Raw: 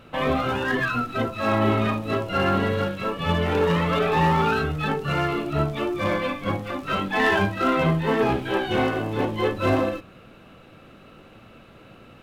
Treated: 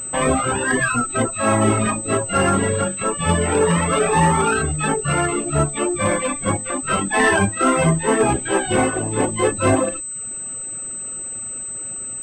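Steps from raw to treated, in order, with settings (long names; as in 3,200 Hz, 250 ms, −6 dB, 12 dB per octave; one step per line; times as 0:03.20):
reverb reduction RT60 0.64 s
switching amplifier with a slow clock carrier 8,100 Hz
level +5.5 dB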